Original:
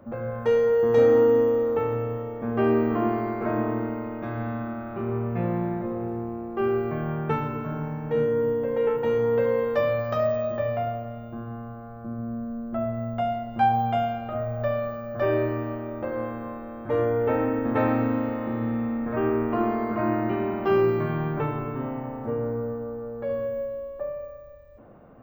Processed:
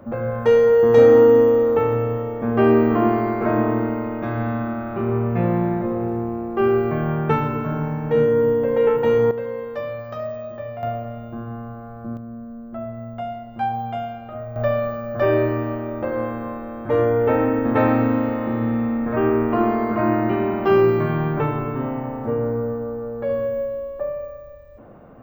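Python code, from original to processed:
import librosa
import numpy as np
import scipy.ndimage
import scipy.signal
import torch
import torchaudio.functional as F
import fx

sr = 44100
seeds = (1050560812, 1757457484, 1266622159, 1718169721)

y = fx.gain(x, sr, db=fx.steps((0.0, 6.5), (9.31, -5.0), (10.83, 4.0), (12.17, -3.0), (14.56, 5.5)))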